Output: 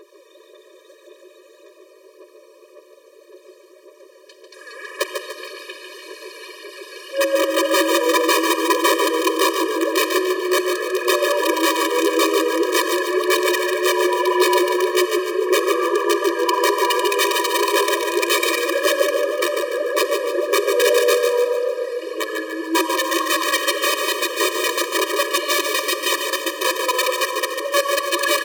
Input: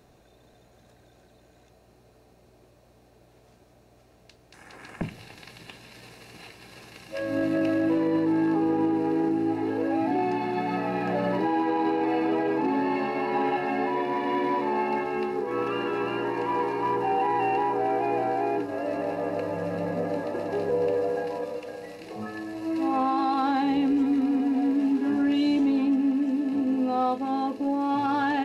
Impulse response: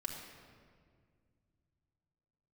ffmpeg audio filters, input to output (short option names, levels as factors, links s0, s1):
-filter_complex "[0:a]asettb=1/sr,asplit=3[s0][s1][s2];[s0]atrim=end=18.214[s3];[s1]atrim=start=18.21:end=19.02,asetpts=PTS-STARTPTS,afade=t=in:d=0.004:c=qsin,afade=t=out:st=0.806:d=0.004:c=qsin,aecho=1:1:3.7:0.96,atrim=end_sample=35721[s4];[s2]atrim=start=19.016[s5];[s3][s4]acrossfade=d=0.004:c1=hsin:c2=qsin[s6];[s6][s5]acrossfade=d=0.004:c1=qsin:c2=hsin,asplit=2[s7][s8];[s8]acompressor=threshold=0.0178:ratio=8,volume=0.891[s9];[s7][s9]amix=inputs=2:normalize=0,aphaser=in_gain=1:out_gain=1:delay=4.3:decay=0.7:speed=1.8:type=sinusoidal,aeval=exprs='(mod(4.22*val(0)+1,2)-1)/4.22':c=same,aecho=1:1:146|292|438|584|730|876:0.501|0.236|0.111|0.052|0.0245|0.0115,asplit=2[s10][s11];[1:a]atrim=start_sample=2205,asetrate=28665,aresample=44100[s12];[s11][s12]afir=irnorm=-1:irlink=0,volume=0.794[s13];[s10][s13]amix=inputs=2:normalize=0,afftfilt=real='re*eq(mod(floor(b*sr/1024/320),2),1)':imag='im*eq(mod(floor(b*sr/1024/320),2),1)':win_size=1024:overlap=0.75,volume=0.891"